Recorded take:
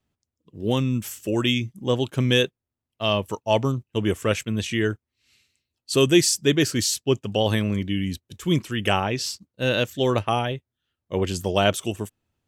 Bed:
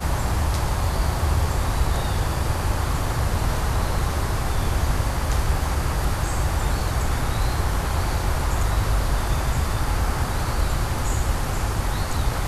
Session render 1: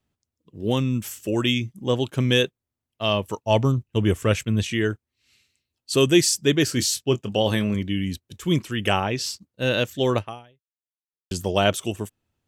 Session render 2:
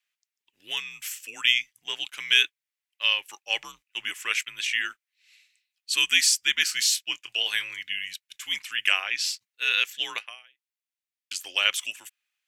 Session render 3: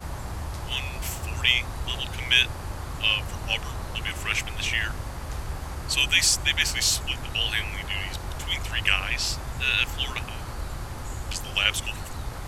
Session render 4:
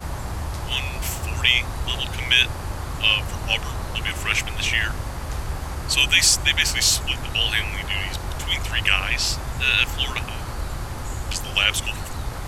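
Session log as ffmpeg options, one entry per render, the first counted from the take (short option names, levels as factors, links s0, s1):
-filter_complex "[0:a]asettb=1/sr,asplit=3[s0][s1][s2];[s0]atrim=end=3.464[s3];[s1]atrim=start=3.46:end=4.63,asetpts=PTS-STARTPTS,afade=t=in:d=0.004:c=qsin,afade=t=out:st=1.166:d=0.004:c=qsin,lowshelf=f=120:g=10[s4];[s2]atrim=start=4.626[s5];[s3][s4]acrossfade=d=0.004:c1=hsin:c2=qsin[s6];[s6][s5]acrossfade=d=0.004:c1=qsin:c2=hsin,asettb=1/sr,asplit=3[s7][s8][s9];[s7]atrim=end=6.654[s10];[s8]atrim=start=6.65:end=7.75,asetpts=PTS-STARTPTS,afade=t=in:d=0.004:c=qsin,afade=t=out:st=1.096:d=0.004:c=qsin,asplit=2[s11][s12];[s12]adelay=24,volume=0.282[s13];[s11][s13]amix=inputs=2:normalize=0,atrim=end_sample=48510[s14];[s9]atrim=start=7.746[s15];[s10][s14]acrossfade=d=0.004:c1=hsin:c2=qsin[s16];[s16][s15]acrossfade=d=0.004:c1=qsin:c2=hsin,asplit=2[s17][s18];[s17]atrim=end=11.31,asetpts=PTS-STARTPTS,afade=t=out:st=10.17:d=1.14:c=exp[s19];[s18]atrim=start=11.31,asetpts=PTS-STARTPTS,afade=t=in:d=0.004:c=hsin[s20];[s19][s20]concat=n=2:v=0:a=1"
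-af "highpass=f=2200:t=q:w=2,afreqshift=-82"
-filter_complex "[1:a]volume=0.282[s0];[0:a][s0]amix=inputs=2:normalize=0"
-af "volume=1.68,alimiter=limit=0.708:level=0:latency=1"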